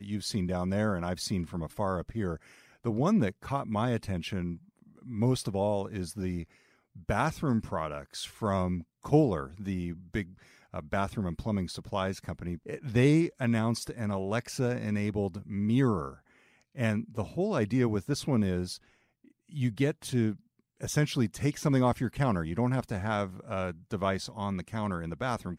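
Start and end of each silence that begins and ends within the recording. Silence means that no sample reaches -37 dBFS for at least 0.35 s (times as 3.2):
2.37–2.85
4.55–5.09
6.43–7.09
10.23–10.74
16.13–16.78
18.76–19.55
20.34–20.83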